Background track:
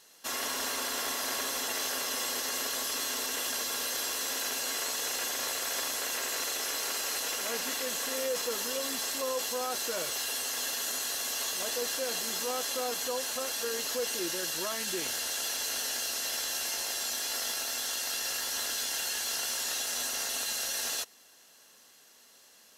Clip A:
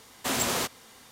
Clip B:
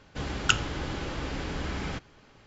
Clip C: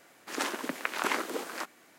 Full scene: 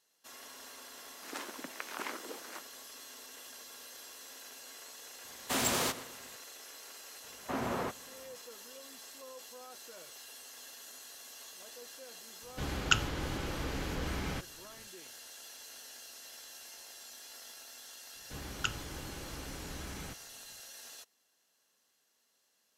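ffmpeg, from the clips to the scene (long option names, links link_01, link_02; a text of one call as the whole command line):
ffmpeg -i bed.wav -i cue0.wav -i cue1.wav -i cue2.wav -filter_complex "[1:a]asplit=2[link_01][link_02];[2:a]asplit=2[link_03][link_04];[0:a]volume=-17dB[link_05];[link_01]asplit=2[link_06][link_07];[link_07]adelay=121,lowpass=frequency=3300:poles=1,volume=-13.5dB,asplit=2[link_08][link_09];[link_09]adelay=121,lowpass=frequency=3300:poles=1,volume=0.42,asplit=2[link_10][link_11];[link_11]adelay=121,lowpass=frequency=3300:poles=1,volume=0.42,asplit=2[link_12][link_13];[link_13]adelay=121,lowpass=frequency=3300:poles=1,volume=0.42[link_14];[link_06][link_08][link_10][link_12][link_14]amix=inputs=5:normalize=0[link_15];[link_02]lowpass=1400[link_16];[3:a]atrim=end=1.98,asetpts=PTS-STARTPTS,volume=-10.5dB,afade=type=in:duration=0.004:curve=hsin,afade=type=out:start_time=1.976:duration=0.004:curve=hsin,adelay=950[link_17];[link_15]atrim=end=1.11,asetpts=PTS-STARTPTS,volume=-3.5dB,afade=type=in:duration=0.004:curve=hsin,afade=type=out:start_time=1.106:duration=0.004:curve=hsin,adelay=231525S[link_18];[link_16]atrim=end=1.11,asetpts=PTS-STARTPTS,volume=-3.5dB,afade=type=in:duration=0.004:curve=hsin,afade=type=out:start_time=1.106:duration=0.004:curve=hsin,adelay=7240[link_19];[link_03]atrim=end=2.46,asetpts=PTS-STARTPTS,volume=-3.5dB,afade=type=in:duration=0.004:curve=hsin,afade=type=out:start_time=2.456:duration=0.004:curve=hsin,adelay=12420[link_20];[link_04]atrim=end=2.46,asetpts=PTS-STARTPTS,volume=-11dB,afade=type=in:duration=0.004:curve=hsin,afade=type=out:start_time=2.456:duration=0.004:curve=hsin,adelay=18150[link_21];[link_05][link_17][link_18][link_19][link_20][link_21]amix=inputs=6:normalize=0" out.wav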